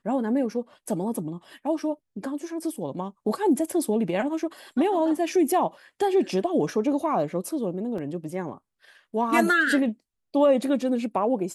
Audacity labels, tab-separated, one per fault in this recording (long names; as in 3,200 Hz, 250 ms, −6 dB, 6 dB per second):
7.980000	7.980000	drop-out 3.8 ms